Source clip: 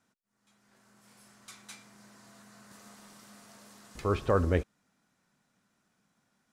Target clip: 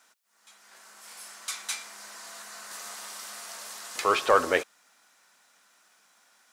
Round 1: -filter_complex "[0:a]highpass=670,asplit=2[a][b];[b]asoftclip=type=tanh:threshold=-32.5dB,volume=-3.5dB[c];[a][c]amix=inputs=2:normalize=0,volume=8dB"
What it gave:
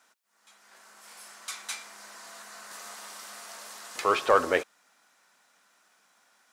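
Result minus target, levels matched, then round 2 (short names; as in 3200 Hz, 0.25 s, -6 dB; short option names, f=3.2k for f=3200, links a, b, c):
4000 Hz band -2.5 dB
-filter_complex "[0:a]highpass=670,highshelf=f=2.4k:g=4.5,asplit=2[a][b];[b]asoftclip=type=tanh:threshold=-32.5dB,volume=-3.5dB[c];[a][c]amix=inputs=2:normalize=0,volume=8dB"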